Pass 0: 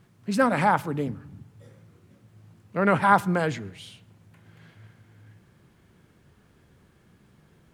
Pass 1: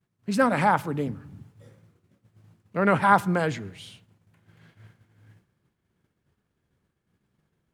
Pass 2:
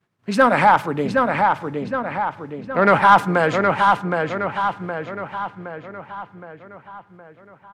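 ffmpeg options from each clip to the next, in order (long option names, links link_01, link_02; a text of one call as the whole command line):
ffmpeg -i in.wav -af "agate=range=-33dB:threshold=-47dB:ratio=3:detection=peak" out.wav
ffmpeg -i in.wav -filter_complex "[0:a]asplit=2[link_01][link_02];[link_02]highpass=frequency=720:poles=1,volume=13dB,asoftclip=type=tanh:threshold=-4.5dB[link_03];[link_01][link_03]amix=inputs=2:normalize=0,lowpass=frequency=2100:poles=1,volume=-6dB,asplit=2[link_04][link_05];[link_05]adelay=767,lowpass=frequency=3800:poles=1,volume=-3.5dB,asplit=2[link_06][link_07];[link_07]adelay=767,lowpass=frequency=3800:poles=1,volume=0.53,asplit=2[link_08][link_09];[link_09]adelay=767,lowpass=frequency=3800:poles=1,volume=0.53,asplit=2[link_10][link_11];[link_11]adelay=767,lowpass=frequency=3800:poles=1,volume=0.53,asplit=2[link_12][link_13];[link_13]adelay=767,lowpass=frequency=3800:poles=1,volume=0.53,asplit=2[link_14][link_15];[link_15]adelay=767,lowpass=frequency=3800:poles=1,volume=0.53,asplit=2[link_16][link_17];[link_17]adelay=767,lowpass=frequency=3800:poles=1,volume=0.53[link_18];[link_04][link_06][link_08][link_10][link_12][link_14][link_16][link_18]amix=inputs=8:normalize=0,volume=4dB" out.wav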